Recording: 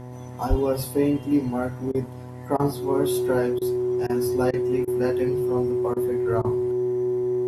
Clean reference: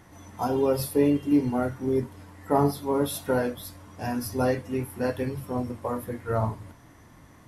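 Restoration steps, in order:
hum removal 124.6 Hz, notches 8
notch filter 370 Hz, Q 30
0:00.49–0:00.61: high-pass filter 140 Hz 24 dB per octave
repair the gap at 0:01.92/0:02.57/0:03.59/0:04.07/0:04.51/0:04.85/0:05.94/0:06.42, 24 ms

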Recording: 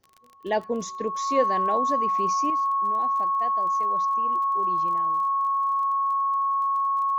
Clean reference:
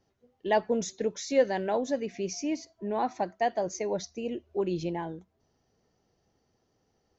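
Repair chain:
click removal
notch filter 1,100 Hz, Q 30
level 0 dB, from 0:02.50 +9.5 dB

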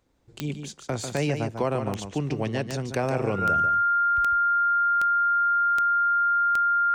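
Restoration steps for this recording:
click removal
notch filter 1,400 Hz, Q 30
echo removal 145 ms −7.5 dB

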